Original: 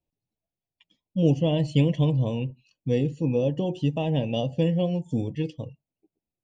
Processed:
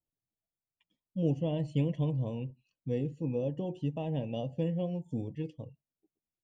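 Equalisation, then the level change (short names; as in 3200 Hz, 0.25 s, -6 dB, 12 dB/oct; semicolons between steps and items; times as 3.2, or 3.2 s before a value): bell 4600 Hz -8.5 dB 1.7 oct; -8.5 dB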